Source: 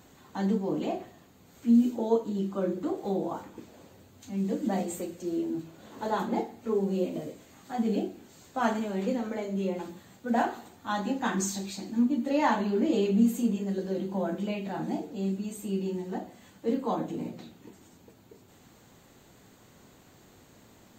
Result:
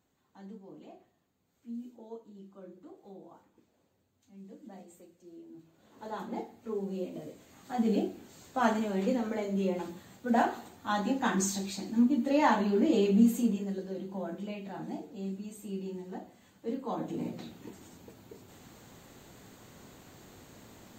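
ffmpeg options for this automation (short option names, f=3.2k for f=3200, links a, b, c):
-af "volume=10dB,afade=t=in:st=5.46:d=0.98:silence=0.237137,afade=t=in:st=7.14:d=0.73:silence=0.421697,afade=t=out:st=13.34:d=0.53:silence=0.446684,afade=t=in:st=16.86:d=0.7:silence=0.316228"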